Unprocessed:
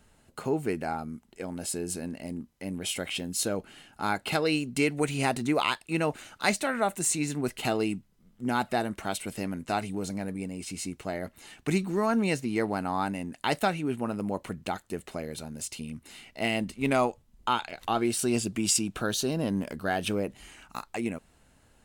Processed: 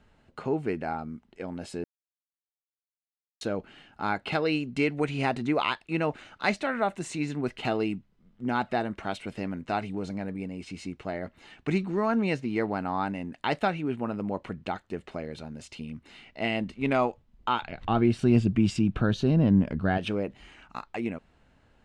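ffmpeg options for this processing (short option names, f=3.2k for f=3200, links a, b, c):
-filter_complex "[0:a]asettb=1/sr,asplit=3[a][b][c];[a]atrim=end=17.624[d];[b]atrim=start=17.62:end=19.98,asetpts=PTS-STARTPTS,afade=t=in:d=0.004:c=qsin,afade=t=out:st=2.356:d=0.004:c=qsin,bass=f=250:g=13,treble=f=4k:g=-6[e];[c]atrim=start=19.976[f];[d][e]acrossfade=d=0.004:c1=hsin:c2=qsin[g];[g][f]acrossfade=d=0.004:c1=qsin:c2=hsin,asplit=3[h][i][j];[h]atrim=end=1.84,asetpts=PTS-STARTPTS,afade=t=out:st=1.836:d=0.004:c=hsin[k];[i]atrim=start=1.84:end=3.41,asetpts=PTS-STARTPTS,volume=0[l];[j]atrim=start=3.41,asetpts=PTS-STARTPTS,afade=t=in:d=0.004:c=hsin[m];[k][l][m]concat=n=3:v=0:a=1,lowpass=3.5k"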